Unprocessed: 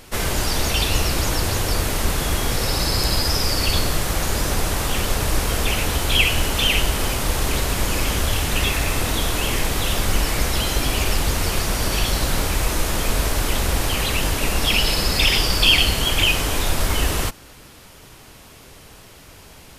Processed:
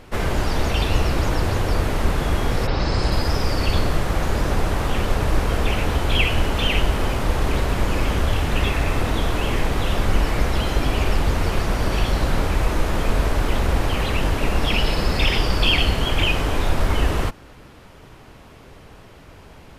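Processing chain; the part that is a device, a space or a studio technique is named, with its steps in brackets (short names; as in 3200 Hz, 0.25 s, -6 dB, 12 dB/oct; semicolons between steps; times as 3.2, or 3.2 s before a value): through cloth (high shelf 3800 Hz -17.5 dB); 2.66–3.1 LPF 4300 Hz -> 11000 Hz 24 dB/oct; gain +2 dB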